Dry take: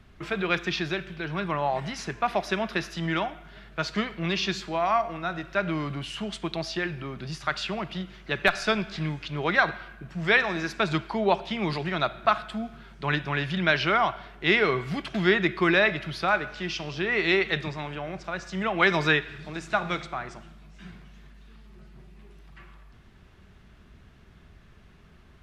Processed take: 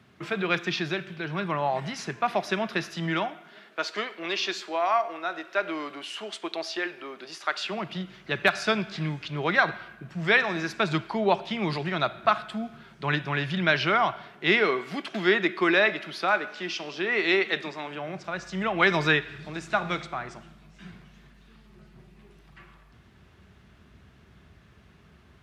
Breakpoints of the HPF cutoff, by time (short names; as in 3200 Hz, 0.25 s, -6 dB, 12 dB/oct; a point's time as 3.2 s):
HPF 24 dB/oct
2.91 s 110 Hz
3.9 s 320 Hz
7.58 s 320 Hz
8.04 s 82 Hz
14.12 s 82 Hz
14.74 s 220 Hz
17.85 s 220 Hz
18.43 s 59 Hz